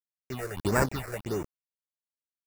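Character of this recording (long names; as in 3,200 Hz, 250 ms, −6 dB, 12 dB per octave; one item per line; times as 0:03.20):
a quantiser's noise floor 6 bits, dither none
sample-and-hold tremolo
aliases and images of a low sample rate 3,200 Hz, jitter 0%
phaser sweep stages 6, 1.6 Hz, lowest notch 220–4,100 Hz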